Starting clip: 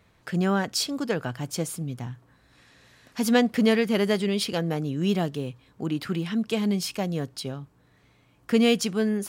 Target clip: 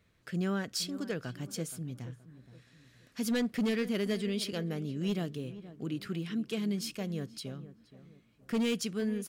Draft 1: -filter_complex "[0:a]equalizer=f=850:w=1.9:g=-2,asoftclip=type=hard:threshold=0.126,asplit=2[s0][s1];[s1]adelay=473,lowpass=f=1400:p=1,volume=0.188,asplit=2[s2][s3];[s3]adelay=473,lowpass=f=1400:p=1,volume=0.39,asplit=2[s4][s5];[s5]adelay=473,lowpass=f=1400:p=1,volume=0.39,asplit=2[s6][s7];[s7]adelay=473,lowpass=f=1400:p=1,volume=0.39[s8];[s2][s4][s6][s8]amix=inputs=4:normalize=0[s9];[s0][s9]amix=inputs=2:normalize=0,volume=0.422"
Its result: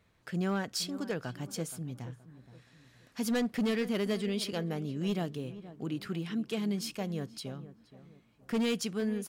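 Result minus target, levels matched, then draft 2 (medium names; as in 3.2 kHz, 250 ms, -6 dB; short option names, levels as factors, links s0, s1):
1 kHz band +3.5 dB
-filter_complex "[0:a]equalizer=f=850:w=1.9:g=-9.5,asoftclip=type=hard:threshold=0.126,asplit=2[s0][s1];[s1]adelay=473,lowpass=f=1400:p=1,volume=0.188,asplit=2[s2][s3];[s3]adelay=473,lowpass=f=1400:p=1,volume=0.39,asplit=2[s4][s5];[s5]adelay=473,lowpass=f=1400:p=1,volume=0.39,asplit=2[s6][s7];[s7]adelay=473,lowpass=f=1400:p=1,volume=0.39[s8];[s2][s4][s6][s8]amix=inputs=4:normalize=0[s9];[s0][s9]amix=inputs=2:normalize=0,volume=0.422"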